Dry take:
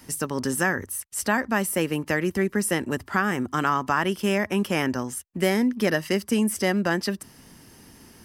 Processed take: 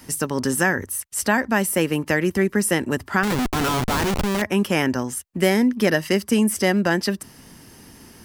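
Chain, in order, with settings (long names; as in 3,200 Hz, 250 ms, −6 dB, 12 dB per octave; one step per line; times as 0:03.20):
dynamic equaliser 1,200 Hz, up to −6 dB, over −42 dBFS, Q 6.4
0:03.23–0:04.42: comparator with hysteresis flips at −32.5 dBFS
level +4 dB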